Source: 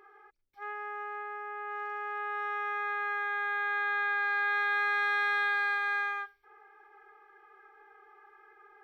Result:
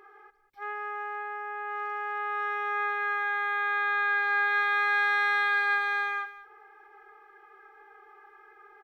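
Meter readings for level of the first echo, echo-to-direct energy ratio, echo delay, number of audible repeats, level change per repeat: −15.0 dB, −15.0 dB, 194 ms, 1, repeats not evenly spaced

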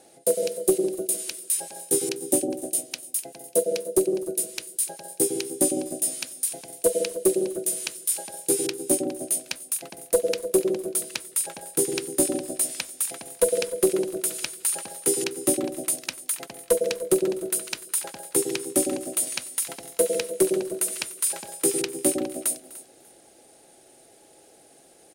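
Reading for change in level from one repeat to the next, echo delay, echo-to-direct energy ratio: repeats not evenly spaced, 250 ms, −15.5 dB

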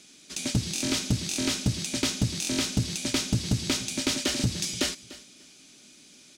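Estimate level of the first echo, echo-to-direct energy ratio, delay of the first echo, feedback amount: −18.0 dB, −18.0 dB, 295 ms, 20%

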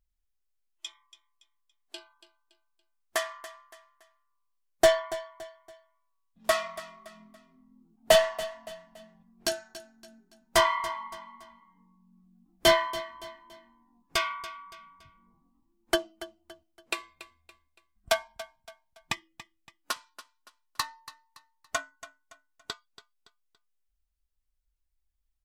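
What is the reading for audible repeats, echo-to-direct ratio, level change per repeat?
3, −15.0 dB, −8.5 dB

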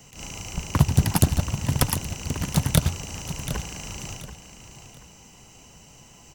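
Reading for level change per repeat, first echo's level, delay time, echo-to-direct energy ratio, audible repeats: −10.5 dB, −12.0 dB, 732 ms, −11.5 dB, 3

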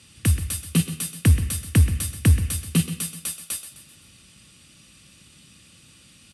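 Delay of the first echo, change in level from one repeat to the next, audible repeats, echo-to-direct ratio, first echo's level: 129 ms, −7.0 dB, 4, −11.0 dB, −12.0 dB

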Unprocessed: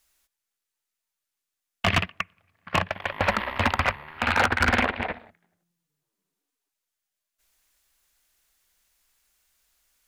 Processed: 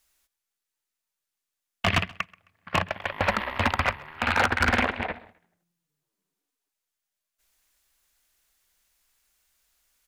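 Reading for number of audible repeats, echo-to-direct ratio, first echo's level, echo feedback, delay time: 2, −23.5 dB, −24.0 dB, 34%, 132 ms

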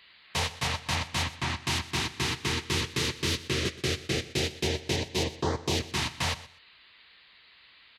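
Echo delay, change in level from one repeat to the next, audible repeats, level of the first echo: 123 ms, −15.0 dB, 2, −17.0 dB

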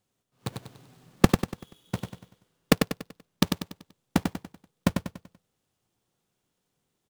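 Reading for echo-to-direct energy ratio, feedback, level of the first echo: −4.5 dB, 41%, −5.5 dB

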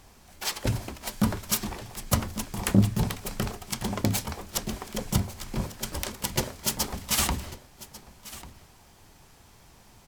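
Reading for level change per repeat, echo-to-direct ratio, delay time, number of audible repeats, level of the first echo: repeats not evenly spaced, −17.5 dB, 1,144 ms, 1, −17.5 dB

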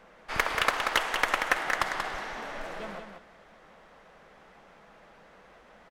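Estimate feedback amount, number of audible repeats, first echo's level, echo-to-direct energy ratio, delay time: 16%, 2, −6.0 dB, −6.0 dB, 184 ms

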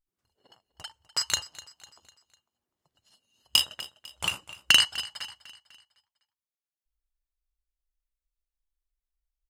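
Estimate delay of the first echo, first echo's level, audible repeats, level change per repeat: 250 ms, −18.0 dB, 3, −6.5 dB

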